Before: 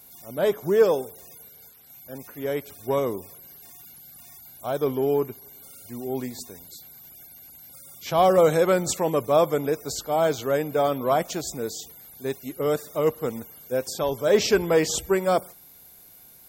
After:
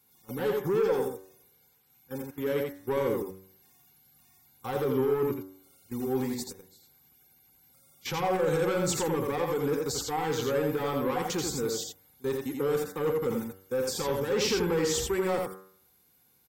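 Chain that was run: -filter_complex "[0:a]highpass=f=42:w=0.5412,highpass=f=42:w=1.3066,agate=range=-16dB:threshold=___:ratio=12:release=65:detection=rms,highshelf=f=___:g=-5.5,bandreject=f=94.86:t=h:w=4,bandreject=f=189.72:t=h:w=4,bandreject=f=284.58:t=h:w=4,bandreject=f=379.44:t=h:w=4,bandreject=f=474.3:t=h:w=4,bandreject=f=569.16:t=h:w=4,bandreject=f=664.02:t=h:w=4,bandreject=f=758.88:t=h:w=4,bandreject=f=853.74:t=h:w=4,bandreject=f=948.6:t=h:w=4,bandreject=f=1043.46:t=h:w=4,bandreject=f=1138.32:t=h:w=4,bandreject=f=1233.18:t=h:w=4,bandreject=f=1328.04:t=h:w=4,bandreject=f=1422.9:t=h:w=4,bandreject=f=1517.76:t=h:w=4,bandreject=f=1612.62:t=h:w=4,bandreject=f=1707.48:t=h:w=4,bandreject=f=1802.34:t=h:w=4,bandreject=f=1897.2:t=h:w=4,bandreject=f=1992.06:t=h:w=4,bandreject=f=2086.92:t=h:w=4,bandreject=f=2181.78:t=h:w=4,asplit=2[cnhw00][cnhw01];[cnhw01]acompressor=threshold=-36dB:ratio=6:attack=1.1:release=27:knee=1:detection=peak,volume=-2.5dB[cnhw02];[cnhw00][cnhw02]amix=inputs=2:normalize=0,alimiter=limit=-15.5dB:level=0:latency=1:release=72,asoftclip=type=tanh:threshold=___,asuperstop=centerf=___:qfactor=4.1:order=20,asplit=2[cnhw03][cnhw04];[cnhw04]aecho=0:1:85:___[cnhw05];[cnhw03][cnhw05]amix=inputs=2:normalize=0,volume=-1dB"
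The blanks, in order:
-38dB, 4800, -21.5dB, 640, 0.631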